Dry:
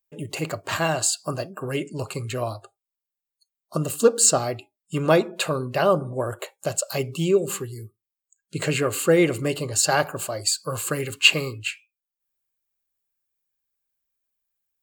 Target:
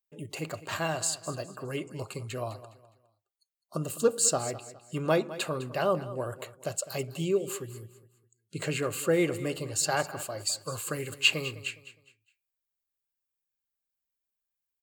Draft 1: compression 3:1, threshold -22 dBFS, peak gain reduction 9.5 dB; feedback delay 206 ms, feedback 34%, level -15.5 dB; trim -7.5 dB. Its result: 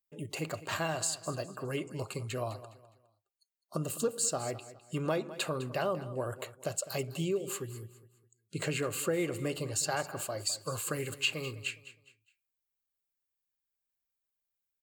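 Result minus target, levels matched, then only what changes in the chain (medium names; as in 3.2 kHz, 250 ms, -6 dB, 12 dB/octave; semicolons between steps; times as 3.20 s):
compression: peak gain reduction +9.5 dB
remove: compression 3:1, threshold -22 dBFS, peak gain reduction 9.5 dB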